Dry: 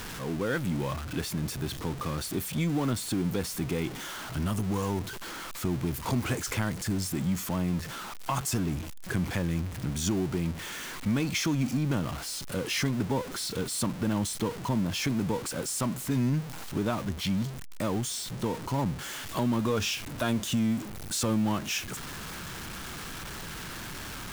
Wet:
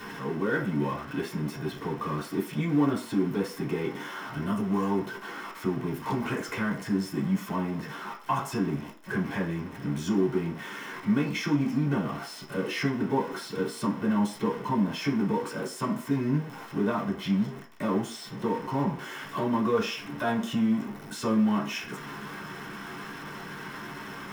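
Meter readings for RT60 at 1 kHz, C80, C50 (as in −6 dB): 0.55 s, 14.0 dB, 10.0 dB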